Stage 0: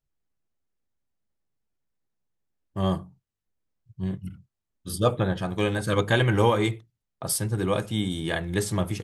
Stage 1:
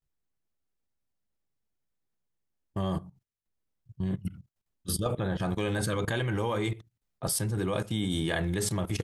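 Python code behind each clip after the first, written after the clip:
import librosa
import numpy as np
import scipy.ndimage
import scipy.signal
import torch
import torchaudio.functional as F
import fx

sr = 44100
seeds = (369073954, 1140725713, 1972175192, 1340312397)

y = fx.level_steps(x, sr, step_db=17)
y = F.gain(torch.from_numpy(y), 5.0).numpy()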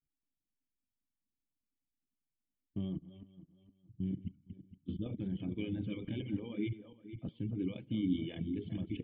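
y = fx.reverse_delay_fb(x, sr, ms=231, feedback_pct=52, wet_db=-7.5)
y = fx.formant_cascade(y, sr, vowel='i')
y = fx.dereverb_blind(y, sr, rt60_s=1.3)
y = F.gain(torch.from_numpy(y), 3.5).numpy()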